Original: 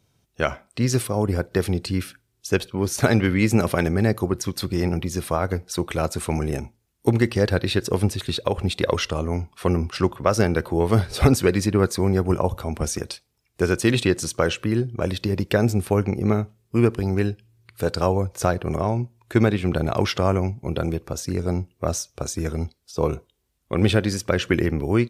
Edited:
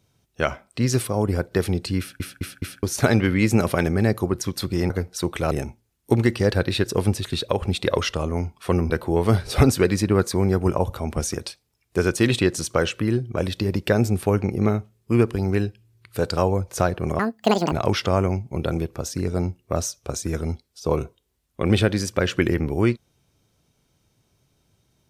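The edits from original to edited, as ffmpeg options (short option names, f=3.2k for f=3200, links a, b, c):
-filter_complex "[0:a]asplit=10[a][b][c][d][e][f][g][h][i][j];[a]atrim=end=2.202[k];[b]atrim=start=1.988:end=2.202[l];[c]atrim=start=1.988:end=2.202[m];[d]atrim=start=1.988:end=2.202[n];[e]atrim=start=2.828:end=4.902[o];[f]atrim=start=5.448:end=6.062[p];[g]atrim=start=6.468:end=9.862[q];[h]atrim=start=10.538:end=18.834[r];[i]atrim=start=18.83:end=19.84,asetpts=PTS-STARTPTS,asetrate=83790,aresample=44100[s];[j]atrim=start=19.836[t];[k][l]acrossfade=d=0.004:c1=hsin:c2=hsin[u];[u][m]acrossfade=d=0.004:c1=hsin:c2=hsin[v];[v][n]acrossfade=d=0.004:c1=hsin:c2=hsin[w];[w][o]acrossfade=d=0.004:c1=hsin:c2=hsin[x];[x][p]acrossfade=d=0.004:c1=hsin:c2=hsin[y];[y][q]acrossfade=d=0.004:c1=hsin:c2=hsin[z];[z][r]acrossfade=d=0.004:c1=hsin:c2=hsin[aa];[aa][s]acrossfade=d=0.004:c1=hsin:c2=hsin[ab];[ab][t]acrossfade=d=0.004:c1=hsin:c2=hsin"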